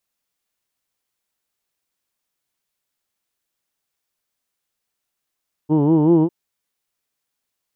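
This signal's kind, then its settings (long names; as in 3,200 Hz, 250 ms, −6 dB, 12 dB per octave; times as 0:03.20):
vowel from formants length 0.60 s, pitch 146 Hz, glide +2.5 semitones, vibrato depth 1.1 semitones, F1 350 Hz, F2 920 Hz, F3 3,000 Hz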